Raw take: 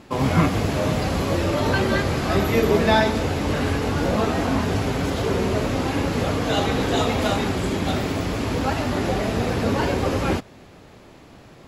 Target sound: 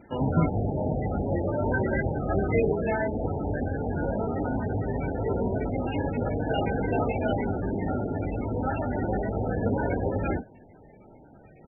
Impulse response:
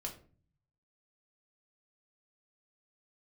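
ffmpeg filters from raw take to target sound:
-filter_complex "[0:a]asplit=3[link_01][link_02][link_03];[link_01]afade=type=out:start_time=2.71:duration=0.02[link_04];[link_02]acompressor=threshold=-18dB:ratio=6,afade=type=in:start_time=2.71:duration=0.02,afade=type=out:start_time=5:duration=0.02[link_05];[link_03]afade=type=in:start_time=5:duration=0.02[link_06];[link_04][link_05][link_06]amix=inputs=3:normalize=0,asuperstop=centerf=1100:order=4:qfactor=4.1,aecho=1:1:20|37:0.376|0.316,volume=-5.5dB" -ar 24000 -c:a libmp3lame -b:a 8k

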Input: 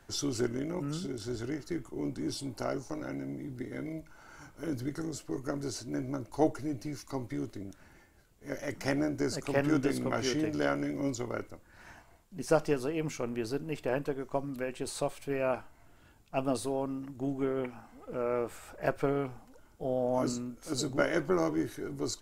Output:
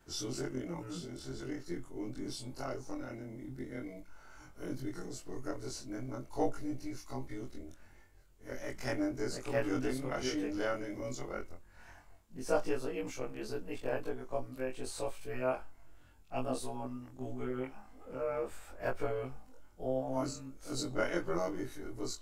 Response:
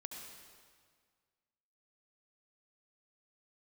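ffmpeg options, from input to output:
-af "afftfilt=real='re':imag='-im':win_size=2048:overlap=0.75,asubboost=boost=2.5:cutoff=67"

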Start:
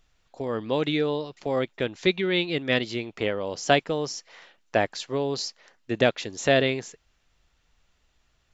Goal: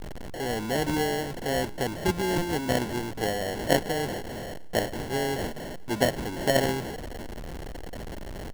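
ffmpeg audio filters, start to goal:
ffmpeg -i in.wav -filter_complex "[0:a]aeval=exprs='val(0)+0.5*0.0473*sgn(val(0))':channel_layout=same,asplit=6[link_01][link_02][link_03][link_04][link_05][link_06];[link_02]adelay=110,afreqshift=-97,volume=-21.5dB[link_07];[link_03]adelay=220,afreqshift=-194,volume=-25.8dB[link_08];[link_04]adelay=330,afreqshift=-291,volume=-30.1dB[link_09];[link_05]adelay=440,afreqshift=-388,volume=-34.4dB[link_10];[link_06]adelay=550,afreqshift=-485,volume=-38.7dB[link_11];[link_01][link_07][link_08][link_09][link_10][link_11]amix=inputs=6:normalize=0,acrusher=samples=36:mix=1:aa=0.000001,volume=-4dB" out.wav

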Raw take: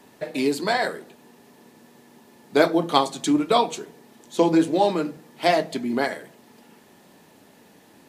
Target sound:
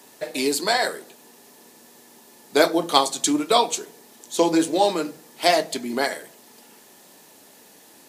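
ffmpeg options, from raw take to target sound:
ffmpeg -i in.wav -af "bass=frequency=250:gain=-9,treble=frequency=4000:gain=10,volume=1dB" out.wav

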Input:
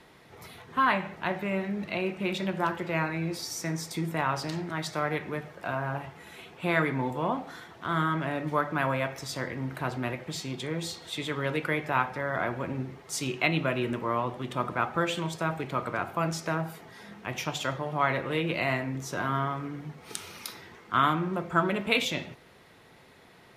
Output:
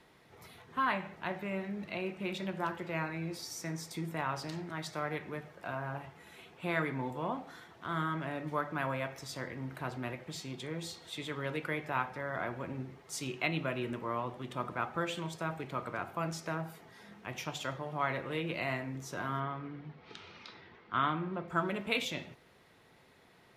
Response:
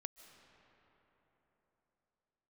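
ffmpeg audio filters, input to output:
-filter_complex "[0:a]asettb=1/sr,asplit=3[link_01][link_02][link_03];[link_01]atrim=end=19.404[link_04];[link_02]atrim=start=19.4:end=21.48,asetpts=PTS-STARTPTS,afade=type=in:duration=0.004:curve=qsin,afade=type=out:start_time=2.076:duration=0.004:curve=qsin,lowpass=frequency=4300:width=0.5412,lowpass=frequency=4300:width=1.3066[link_05];[link_03]atrim=start=21.476[link_06];[link_04][link_05]acrossfade=duration=0.004:curve1=hsin:curve2=qsin[link_07];[link_07][link_06]acrossfade=duration=0.004:curve1=qsin:curve2=hsin,volume=-7dB"

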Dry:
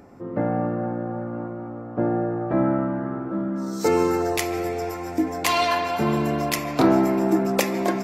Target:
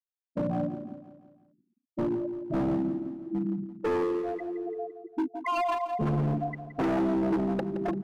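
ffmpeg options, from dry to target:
ffmpeg -i in.wav -filter_complex "[0:a]afftfilt=real='re*gte(hypot(re,im),0.316)':imag='im*gte(hypot(re,im),0.316)':win_size=1024:overlap=0.75,equalizer=frequency=150:width=5.5:gain=8.5,asoftclip=type=hard:threshold=-22dB,asplit=2[link_01][link_02];[link_02]aecho=0:1:170|340|510|680|850:0.251|0.128|0.0653|0.0333|0.017[link_03];[link_01][link_03]amix=inputs=2:normalize=0,volume=-2.5dB" out.wav

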